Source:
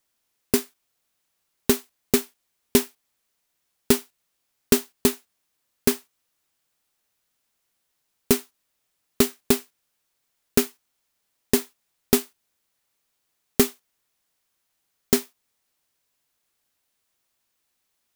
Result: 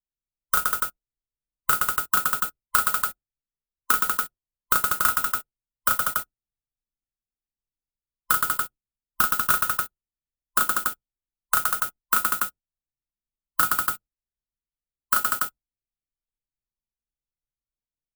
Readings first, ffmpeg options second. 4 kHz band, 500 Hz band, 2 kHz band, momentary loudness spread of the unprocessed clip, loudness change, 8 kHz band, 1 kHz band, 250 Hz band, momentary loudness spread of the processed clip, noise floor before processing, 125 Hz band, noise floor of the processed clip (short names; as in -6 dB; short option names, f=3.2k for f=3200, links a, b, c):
-4.0 dB, -17.0 dB, +10.0 dB, 3 LU, +1.0 dB, +1.0 dB, +15.0 dB, -19.0 dB, 9 LU, -76 dBFS, -9.5 dB, under -85 dBFS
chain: -filter_complex "[0:a]afftfilt=real='real(if(lt(b,960),b+48*(1-2*mod(floor(b/48),2)),b),0)':imag='imag(if(lt(b,960),b+48*(1-2*mod(floor(b/48),2)),b),0)':win_size=2048:overlap=0.75,bandreject=f=2.2k:w=11,anlmdn=6.31,tiltshelf=f=1.1k:g=3,acrossover=split=1300|7200[a][b][c];[a]acompressor=threshold=-25dB:ratio=4[d];[b]acompressor=threshold=-25dB:ratio=4[e];[c]acompressor=threshold=-33dB:ratio=4[f];[d][e][f]amix=inputs=3:normalize=0,aexciter=amount=1.9:drive=8.8:freq=7.8k,asplit=2[g][h];[h]aecho=0:1:34.99|119.5|192.4|285.7:0.631|0.708|0.631|0.631[i];[g][i]amix=inputs=2:normalize=0,volume=-1dB"